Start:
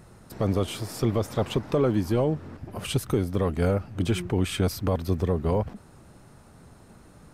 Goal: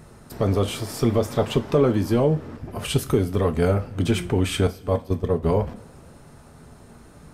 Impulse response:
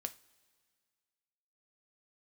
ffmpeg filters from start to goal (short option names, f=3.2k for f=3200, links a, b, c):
-filter_complex "[0:a]asettb=1/sr,asplit=3[a][b][c];[a]atrim=end=4.674[d];[b]atrim=start=4.67:end=5.43,asetpts=PTS-STARTPTS,afade=t=in:d=0.004:c=qsin,afade=t=out:st=0.756:d=0.004:c=qsin,agate=range=-16dB:threshold=-23dB:ratio=16:detection=peak[e];[c]atrim=start=5.426[f];[d][e]acrossfade=d=0.004:c1=hsin:c2=qsin[g];[g][f]acrossfade=d=0.004:c1=qsin:c2=hsin[h];[1:a]atrim=start_sample=2205[i];[h][i]afir=irnorm=-1:irlink=0,volume=6dB"